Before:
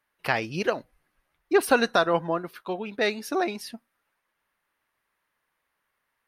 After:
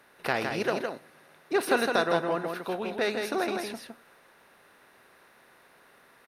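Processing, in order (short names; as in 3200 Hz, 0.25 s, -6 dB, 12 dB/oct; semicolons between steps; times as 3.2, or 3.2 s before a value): per-bin compression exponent 0.6; 0.5–2.55 HPF 110 Hz; echo 0.161 s -5 dB; gain -7 dB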